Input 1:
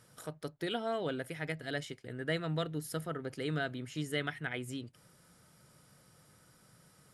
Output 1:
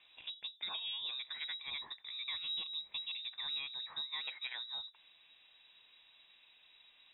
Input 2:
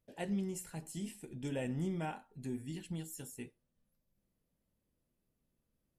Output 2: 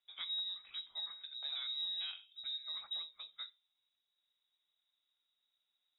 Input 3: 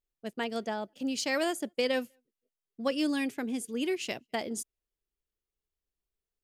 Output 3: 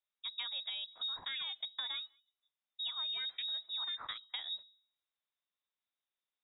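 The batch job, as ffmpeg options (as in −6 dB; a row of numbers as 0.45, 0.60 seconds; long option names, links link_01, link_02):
-filter_complex "[0:a]highpass=frequency=140:width=0.5412,highpass=frequency=140:width=1.3066,acrossover=split=220[link_01][link_02];[link_02]acompressor=threshold=-52dB:ratio=1.5[link_03];[link_01][link_03]amix=inputs=2:normalize=0,bandreject=frequency=205.1:width_type=h:width=4,bandreject=frequency=410.2:width_type=h:width=4,bandreject=frequency=615.3:width_type=h:width=4,bandreject=frequency=820.4:width_type=h:width=4,bandreject=frequency=1025.5:width_type=h:width=4,acompressor=threshold=-38dB:ratio=6,lowpass=frequency=3400:width_type=q:width=0.5098,lowpass=frequency=3400:width_type=q:width=0.6013,lowpass=frequency=3400:width_type=q:width=0.9,lowpass=frequency=3400:width_type=q:width=2.563,afreqshift=-4000,volume=1.5dB"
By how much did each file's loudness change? 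−2.0, +0.5, −6.0 LU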